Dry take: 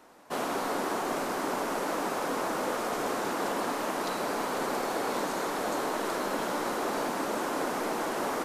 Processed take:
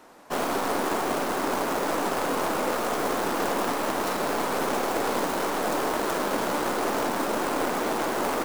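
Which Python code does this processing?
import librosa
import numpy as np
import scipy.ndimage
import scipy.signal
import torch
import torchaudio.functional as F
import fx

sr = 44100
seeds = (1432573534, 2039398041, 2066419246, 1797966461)

y = fx.tracing_dist(x, sr, depth_ms=0.38)
y = y * 10.0 ** (4.5 / 20.0)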